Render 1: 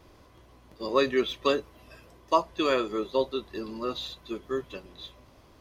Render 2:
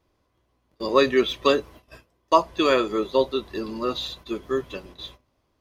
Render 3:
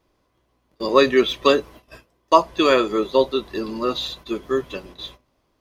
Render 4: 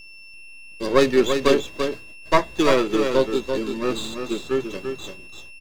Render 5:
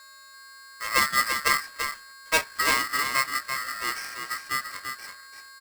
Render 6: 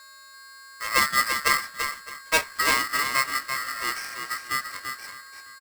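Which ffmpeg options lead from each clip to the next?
-af "agate=range=-20dB:threshold=-49dB:ratio=16:detection=peak,volume=5.5dB"
-af "equalizer=f=84:w=2.4:g=-7.5,volume=3.5dB"
-filter_complex "[0:a]aeval=exprs='val(0)+0.0141*sin(2*PI*2700*n/s)':c=same,acrossover=split=520[a][b];[b]aeval=exprs='max(val(0),0)':c=same[c];[a][c]amix=inputs=2:normalize=0,aecho=1:1:339:0.473"
-af "aeval=exprs='val(0)*sgn(sin(2*PI*1600*n/s))':c=same,volume=-6.5dB"
-af "aecho=1:1:612:0.119,volume=1dB"

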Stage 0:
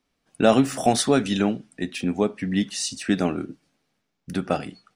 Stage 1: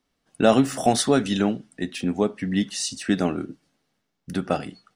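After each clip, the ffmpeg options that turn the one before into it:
-af "bandreject=f=2.4k:w=13"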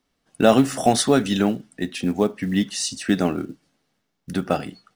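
-af "acrusher=bits=8:mode=log:mix=0:aa=0.000001,volume=2dB"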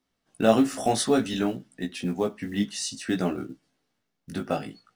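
-af "flanger=delay=15.5:depth=3.6:speed=0.56,volume=-2.5dB"

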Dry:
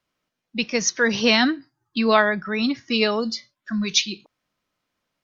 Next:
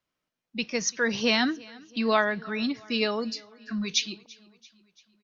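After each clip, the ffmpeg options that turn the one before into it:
-af "aecho=1:1:338|676|1014|1352:0.0668|0.0381|0.0217|0.0124,volume=-6dB"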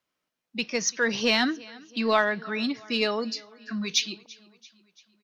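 -filter_complex "[0:a]lowshelf=f=120:g=-11,asplit=2[a][b];[b]asoftclip=type=tanh:threshold=-24dB,volume=-10.5dB[c];[a][c]amix=inputs=2:normalize=0"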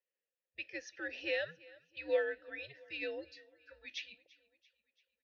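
-filter_complex "[0:a]afreqshift=-150,asplit=3[a][b][c];[a]bandpass=f=530:t=q:w=8,volume=0dB[d];[b]bandpass=f=1.84k:t=q:w=8,volume=-6dB[e];[c]bandpass=f=2.48k:t=q:w=8,volume=-9dB[f];[d][e][f]amix=inputs=3:normalize=0,lowshelf=f=180:g=-6.5,volume=-1.5dB"

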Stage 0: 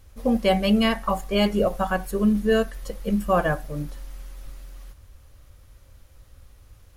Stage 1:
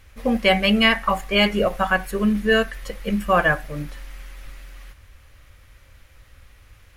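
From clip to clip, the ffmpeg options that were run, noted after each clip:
-af "equalizer=f=2.1k:t=o:w=1.5:g=12"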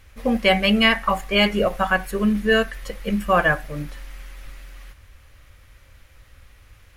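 -af anull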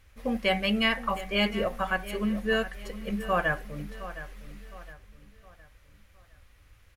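-filter_complex "[0:a]asplit=2[a][b];[b]adelay=713,lowpass=f=4.8k:p=1,volume=-14dB,asplit=2[c][d];[d]adelay=713,lowpass=f=4.8k:p=1,volume=0.39,asplit=2[e][f];[f]adelay=713,lowpass=f=4.8k:p=1,volume=0.39,asplit=2[g][h];[h]adelay=713,lowpass=f=4.8k:p=1,volume=0.39[i];[a][c][e][g][i]amix=inputs=5:normalize=0,volume=-8.5dB"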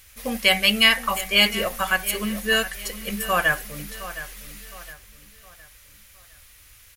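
-af "crystalizer=i=9:c=0"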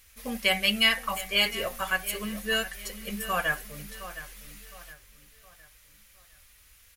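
-af "flanger=delay=4.2:depth=3.4:regen=-47:speed=0.29:shape=triangular,volume=-2.5dB"

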